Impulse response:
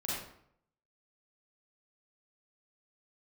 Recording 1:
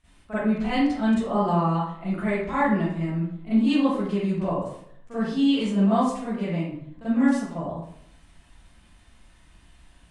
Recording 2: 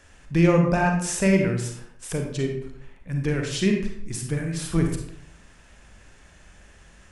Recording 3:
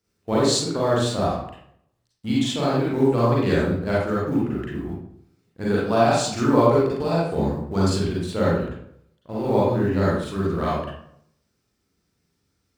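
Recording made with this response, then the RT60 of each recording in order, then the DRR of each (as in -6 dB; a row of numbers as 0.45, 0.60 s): 3; 0.70, 0.70, 0.70 s; -15.5, 2.5, -7.5 dB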